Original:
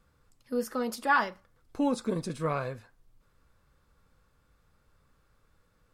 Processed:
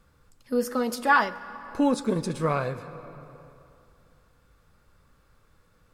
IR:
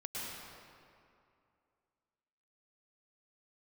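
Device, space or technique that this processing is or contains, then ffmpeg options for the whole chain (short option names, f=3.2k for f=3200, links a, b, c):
compressed reverb return: -filter_complex "[0:a]asplit=2[a][b];[1:a]atrim=start_sample=2205[c];[b][c]afir=irnorm=-1:irlink=0,acompressor=threshold=-31dB:ratio=6,volume=-9.5dB[d];[a][d]amix=inputs=2:normalize=0,volume=4dB"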